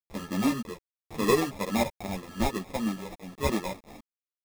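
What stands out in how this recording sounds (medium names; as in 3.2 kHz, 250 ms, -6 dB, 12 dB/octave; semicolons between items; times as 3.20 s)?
aliases and images of a low sample rate 1.5 kHz, jitter 0%; random-step tremolo, depth 70%; a quantiser's noise floor 8-bit, dither none; a shimmering, thickened sound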